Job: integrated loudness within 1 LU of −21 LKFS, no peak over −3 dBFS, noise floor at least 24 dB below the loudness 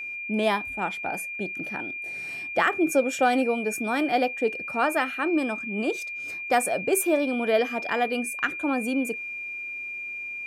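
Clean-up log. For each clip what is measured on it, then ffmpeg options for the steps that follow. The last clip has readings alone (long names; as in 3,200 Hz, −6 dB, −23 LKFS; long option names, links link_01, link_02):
interfering tone 2,400 Hz; level of the tone −32 dBFS; integrated loudness −26.0 LKFS; sample peak −8.5 dBFS; target loudness −21.0 LKFS
→ -af "bandreject=frequency=2400:width=30"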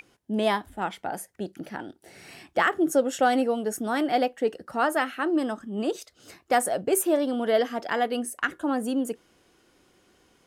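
interfering tone none found; integrated loudness −26.5 LKFS; sample peak −9.0 dBFS; target loudness −21.0 LKFS
→ -af "volume=5.5dB"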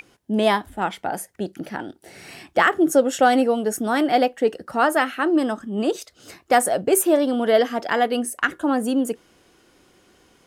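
integrated loudness −21.0 LKFS; sample peak −3.5 dBFS; background noise floor −58 dBFS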